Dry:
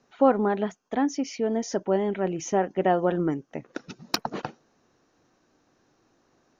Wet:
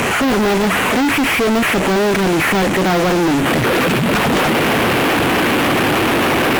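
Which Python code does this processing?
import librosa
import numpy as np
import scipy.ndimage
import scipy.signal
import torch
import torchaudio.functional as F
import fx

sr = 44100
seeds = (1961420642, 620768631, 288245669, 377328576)

p1 = fx.delta_mod(x, sr, bps=16000, step_db=-36.0)
p2 = scipy.signal.sosfilt(scipy.signal.butter(2, 60.0, 'highpass', fs=sr, output='sos'), p1)
p3 = fx.high_shelf(p2, sr, hz=2000.0, db=4.5)
p4 = fx.rider(p3, sr, range_db=4, speed_s=0.5)
p5 = p3 + F.gain(torch.from_numpy(p4), 1.5).numpy()
y = fx.fuzz(p5, sr, gain_db=41.0, gate_db=-40.0)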